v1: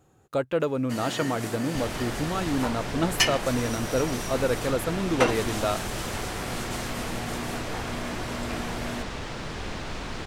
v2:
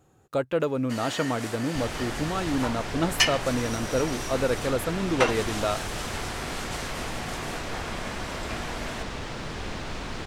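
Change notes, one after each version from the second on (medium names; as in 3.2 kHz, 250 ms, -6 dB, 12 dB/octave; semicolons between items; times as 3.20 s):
first sound: add frequency weighting A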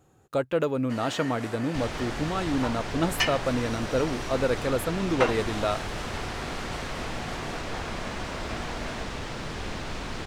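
first sound: add treble shelf 3.5 kHz -11.5 dB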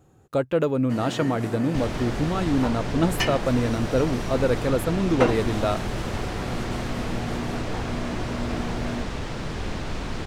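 first sound: remove frequency weighting A; master: add bass shelf 480 Hz +6 dB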